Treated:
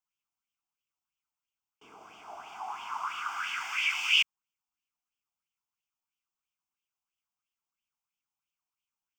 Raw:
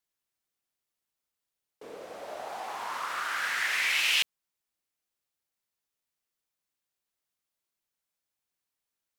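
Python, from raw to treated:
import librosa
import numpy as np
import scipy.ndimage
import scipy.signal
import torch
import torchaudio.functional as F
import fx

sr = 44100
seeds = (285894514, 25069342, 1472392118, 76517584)

y = fx.fixed_phaser(x, sr, hz=2700.0, stages=8)
y = fx.bell_lfo(y, sr, hz=3.0, low_hz=720.0, high_hz=3100.0, db=12)
y = F.gain(torch.from_numpy(y), -5.5).numpy()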